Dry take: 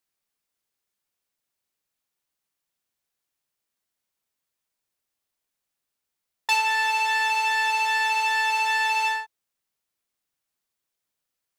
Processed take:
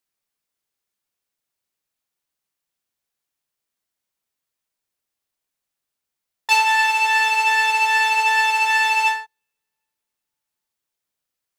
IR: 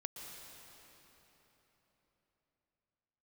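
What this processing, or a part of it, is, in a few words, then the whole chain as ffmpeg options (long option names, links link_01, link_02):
keyed gated reverb: -filter_complex "[0:a]asettb=1/sr,asplit=3[link_01][link_02][link_03];[link_01]atrim=end=8.184[link_04];[link_02]atrim=start=8.18:end=8.61,asetpts=PTS-STARTPTS,afade=type=in:duration=0.004:curve=qsin,afade=type=out:start_time=0.426:duration=0.004:curve=qsin,highpass=290[link_05];[link_03]atrim=start=8.606[link_06];[link_04][link_05]acrossfade=duration=0.004:curve1=hsin:curve2=qsin[link_07];[link_07][link_06]acrossfade=duration=0.004:curve1=qsin:curve2=hsin,asplit=3[link_08][link_09][link_10];[1:a]atrim=start_sample=2205[link_11];[link_09][link_11]afir=irnorm=-1:irlink=0[link_12];[link_10]apad=whole_len=510914[link_13];[link_12][link_13]sidechaingate=range=-53dB:threshold=-22dB:ratio=16:detection=peak,volume=4.5dB[link_14];[link_08][link_14]amix=inputs=2:normalize=0"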